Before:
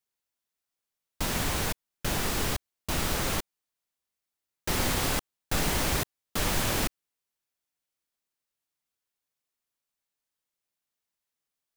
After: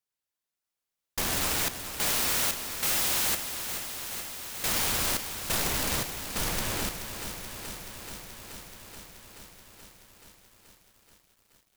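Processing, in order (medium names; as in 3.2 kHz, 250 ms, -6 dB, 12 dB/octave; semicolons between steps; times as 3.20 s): Doppler pass-by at 3.02 s, 9 m/s, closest 9.5 m; integer overflow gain 29.5 dB; bit-crushed delay 429 ms, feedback 80%, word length 11-bit, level -9.5 dB; trim +7 dB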